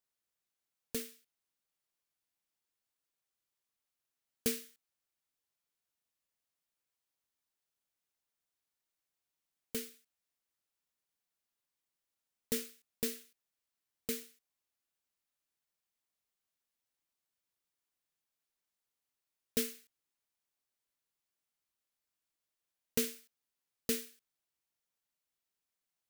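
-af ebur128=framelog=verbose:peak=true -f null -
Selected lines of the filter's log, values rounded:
Integrated loudness:
  I:         -38.6 LUFS
  Threshold: -49.7 LUFS
Loudness range:
  LRA:         8.9 LU
  Threshold: -65.1 LUFS
  LRA low:   -50.6 LUFS
  LRA high:  -41.7 LUFS
True peak:
  Peak:      -14.3 dBFS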